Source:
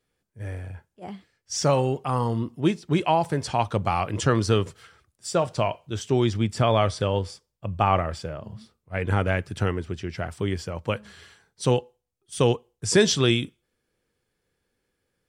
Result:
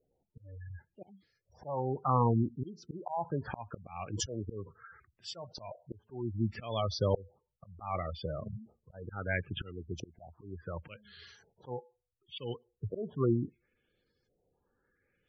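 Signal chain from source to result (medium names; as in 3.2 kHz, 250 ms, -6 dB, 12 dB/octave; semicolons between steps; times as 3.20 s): LFO low-pass saw up 0.7 Hz 560–6500 Hz; slow attack 628 ms; spectral gate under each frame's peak -15 dB strong; trim -1.5 dB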